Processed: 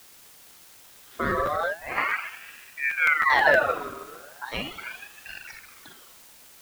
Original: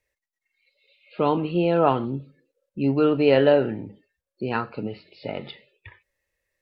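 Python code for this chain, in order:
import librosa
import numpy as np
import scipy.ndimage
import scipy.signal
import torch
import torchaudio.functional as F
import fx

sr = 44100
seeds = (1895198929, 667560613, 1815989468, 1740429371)

y = fx.rotary(x, sr, hz=0.8)
y = fx.rev_spring(y, sr, rt60_s=2.2, pass_ms=(39, 49), chirp_ms=25, drr_db=-1.0)
y = fx.over_compress(y, sr, threshold_db=-22.0, ratio=-0.5, at=(1.37, 1.98))
y = fx.bessel_highpass(y, sr, hz=380.0, order=8, at=(4.45, 5.47))
y = y + 10.0 ** (-21.0 / 20.0) * np.pad(y, (int(115 * sr / 1000.0), 0))[:len(y)]
y = fx.dereverb_blind(y, sr, rt60_s=1.8)
y = fx.lowpass(y, sr, hz=1100.0, slope=12, at=(2.8, 3.3))
y = fx.quant_dither(y, sr, seeds[0], bits=8, dither='triangular')
y = fx.buffer_crackle(y, sr, first_s=0.49, period_s=0.16, block=512, kind='repeat')
y = fx.ring_lfo(y, sr, carrier_hz=1500.0, swing_pct=45, hz=0.38)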